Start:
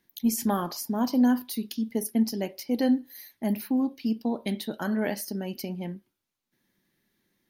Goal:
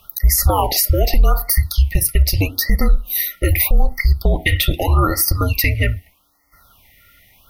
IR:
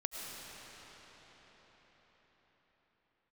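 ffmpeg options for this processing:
-af "asuperstop=centerf=1900:order=20:qfactor=4.8,equalizer=f=220:w=1.1:g=-6.5,afreqshift=-290,acompressor=threshold=0.02:ratio=12,equalizer=f=125:t=o:w=1:g=-9,equalizer=f=250:t=o:w=1:g=-9,equalizer=f=500:t=o:w=1:g=-5,equalizer=f=2000:t=o:w=1:g=6,equalizer=f=4000:t=o:w=1:g=-7,equalizer=f=8000:t=o:w=1:g=-9,alimiter=level_in=42.2:limit=0.891:release=50:level=0:latency=1,afftfilt=real='re*(1-between(b*sr/1024,920*pow(3100/920,0.5+0.5*sin(2*PI*0.81*pts/sr))/1.41,920*pow(3100/920,0.5+0.5*sin(2*PI*0.81*pts/sr))*1.41))':imag='im*(1-between(b*sr/1024,920*pow(3100/920,0.5+0.5*sin(2*PI*0.81*pts/sr))/1.41,920*pow(3100/920,0.5+0.5*sin(2*PI*0.81*pts/sr))*1.41))':win_size=1024:overlap=0.75,volume=0.668"

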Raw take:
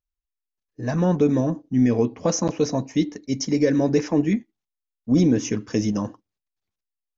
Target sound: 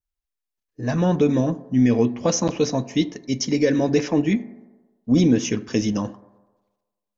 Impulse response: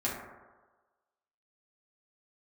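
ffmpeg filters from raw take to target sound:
-filter_complex "[0:a]adynamicequalizer=threshold=0.00316:dfrequency=3200:dqfactor=1.4:tfrequency=3200:tqfactor=1.4:attack=5:release=100:ratio=0.375:range=3.5:mode=boostabove:tftype=bell,asplit=2[s0][s1];[1:a]atrim=start_sample=2205[s2];[s1][s2]afir=irnorm=-1:irlink=0,volume=0.1[s3];[s0][s3]amix=inputs=2:normalize=0"

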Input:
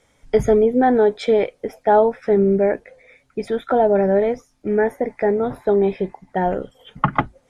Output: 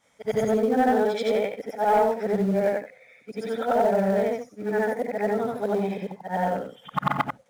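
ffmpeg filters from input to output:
-filter_complex "[0:a]afftfilt=real='re':imag='-im':win_size=8192:overlap=0.75,highpass=170,equalizer=f=360:w=4.2:g=-14,asoftclip=type=tanh:threshold=0.211,asplit=2[s0][s1];[s1]acrusher=bits=3:mode=log:mix=0:aa=0.000001,volume=0.282[s2];[s0][s2]amix=inputs=2:normalize=0"

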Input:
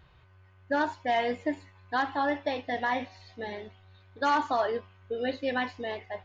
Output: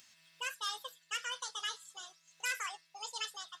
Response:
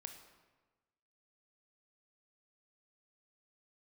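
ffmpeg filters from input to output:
-af "aderivative,asetrate=76440,aresample=44100,acompressor=mode=upward:threshold=0.001:ratio=2.5,volume=2"

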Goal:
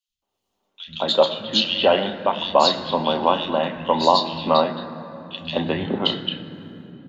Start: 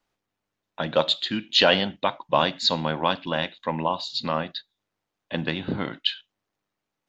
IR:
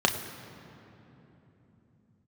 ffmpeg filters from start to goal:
-filter_complex "[0:a]dynaudnorm=f=100:g=7:m=5.96,acrossover=split=150|2700[s0][s1][s2];[s0]adelay=80[s3];[s1]adelay=220[s4];[s3][s4][s2]amix=inputs=3:normalize=0,asplit=2[s5][s6];[1:a]atrim=start_sample=2205,lowshelf=f=100:g=-6.5[s7];[s6][s7]afir=irnorm=-1:irlink=0,volume=0.266[s8];[s5][s8]amix=inputs=2:normalize=0,volume=0.473"

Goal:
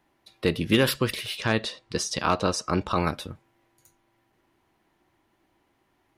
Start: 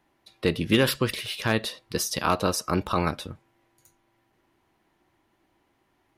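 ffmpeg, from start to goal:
-filter_complex "[0:a]asettb=1/sr,asplit=3[s0][s1][s2];[s0]atrim=end=1.374[s3];[s1]atrim=start=1.37:end=2.97,asetpts=PTS-STARTPTS,afade=t=in:d=0.004:c=qsin,afade=t=out:st=1.596:d=0.004:c=qsin,lowpass=f=8500:w=0.5412,lowpass=f=8500:w=1.3066[s4];[s2]atrim=start=2.966[s5];[s3][s4]acrossfade=d=0.004:c1=hsin:c2=qsin[s6];[s6][s5]acrossfade=d=0.004:c1=qsin:c2=hsin"

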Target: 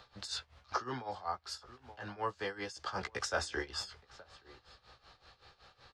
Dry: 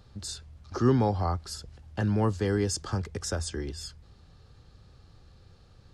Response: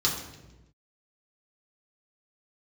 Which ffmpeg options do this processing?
-filter_complex "[0:a]acrossover=split=580 5100:gain=0.0891 1 0.178[s0][s1][s2];[s0][s1][s2]amix=inputs=3:normalize=0,asplit=3[s3][s4][s5];[s3]afade=t=out:st=0.75:d=0.02[s6];[s4]acompressor=threshold=0.001:ratio=1.5,afade=t=in:st=0.75:d=0.02,afade=t=out:st=2.86:d=0.02[s7];[s5]afade=t=in:st=2.86:d=0.02[s8];[s6][s7][s8]amix=inputs=3:normalize=0,asplit=2[s9][s10];[s10]adelay=16,volume=0.501[s11];[s9][s11]amix=inputs=2:normalize=0,asplit=2[s12][s13];[s13]adelay=874.6,volume=0.141,highshelf=f=4000:g=-19.7[s14];[s12][s14]amix=inputs=2:normalize=0,tremolo=f=5.3:d=0.84,volume=2.82"

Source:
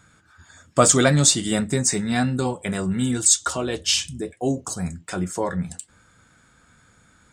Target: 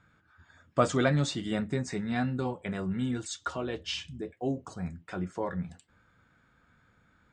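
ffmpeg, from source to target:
-af "lowpass=3000,volume=0.398"

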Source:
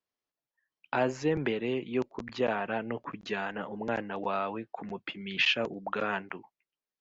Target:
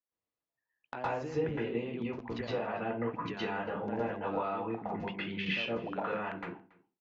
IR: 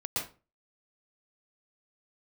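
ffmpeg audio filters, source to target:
-filter_complex "[0:a]agate=range=0.316:threshold=0.00708:ratio=16:detection=peak,lowpass=f=2400:p=1,acompressor=threshold=0.01:ratio=6,aecho=1:1:280:0.0668[s0];[1:a]atrim=start_sample=2205[s1];[s0][s1]afir=irnorm=-1:irlink=0,volume=1.41"

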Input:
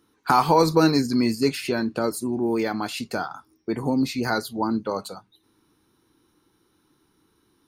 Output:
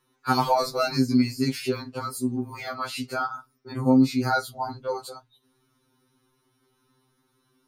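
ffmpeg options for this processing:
-filter_complex "[0:a]asettb=1/sr,asplit=3[s0][s1][s2];[s0]atrim=end=2.684[s3];[s1]atrim=start=2.68:end=4.58,asetpts=PTS-STARTPTS,afade=t=in:d=0.004:c=qsin,afade=t=out:st=1.896:d=0.004:c=qsin,equalizer=f=1300:t=o:w=0.21:g=10.5[s4];[s2]atrim=start=4.576[s5];[s3][s4]acrossfade=d=0.004:c1=hsin:c2=qsin[s6];[s6][s5]acrossfade=d=0.004:c1=qsin:c2=hsin,afftfilt=real='re*2.45*eq(mod(b,6),0)':imag='im*2.45*eq(mod(b,6),0)':win_size=2048:overlap=0.75"

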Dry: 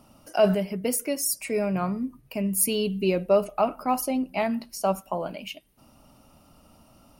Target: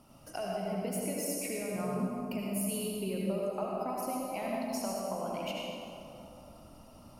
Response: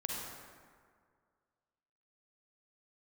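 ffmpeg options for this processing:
-filter_complex "[0:a]acompressor=threshold=0.0224:ratio=6[s0];[1:a]atrim=start_sample=2205,asetrate=28224,aresample=44100[s1];[s0][s1]afir=irnorm=-1:irlink=0,volume=0.596"

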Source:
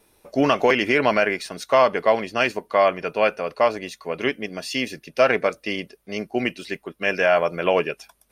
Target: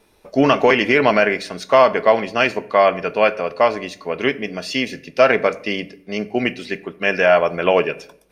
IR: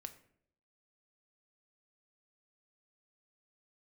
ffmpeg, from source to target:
-filter_complex "[0:a]asplit=2[s0][s1];[1:a]atrim=start_sample=2205,lowpass=7300[s2];[s1][s2]afir=irnorm=-1:irlink=0,volume=2.24[s3];[s0][s3]amix=inputs=2:normalize=0,volume=0.708"

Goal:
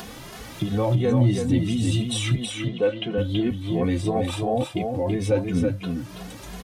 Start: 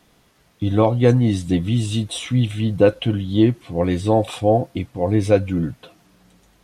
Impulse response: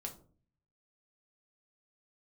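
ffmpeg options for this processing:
-filter_complex "[0:a]acompressor=mode=upward:threshold=0.0891:ratio=2.5,alimiter=limit=0.237:level=0:latency=1:release=27,asettb=1/sr,asplit=3[s0][s1][s2];[s0]atrim=end=2.354[s3];[s1]atrim=start=2.35:end=3.18,asetpts=PTS-STARTPTS,afade=t=in:d=0.004:c=qsin,afade=t=out:st=0.826:d=0.004:c=qsin,highpass=260,lowpass=4100[s4];[s2]atrim=start=3.176[s5];[s3][s4]acrossfade=d=0.004:c1=hsin:c2=qsin[s6];[s6][s5]acrossfade=d=0.004:c1=qsin:c2=hsin,aecho=1:1:328:0.562,asplit=2[s7][s8];[s8]adelay=2.4,afreqshift=2.9[s9];[s7][s9]amix=inputs=2:normalize=1,volume=1.19"

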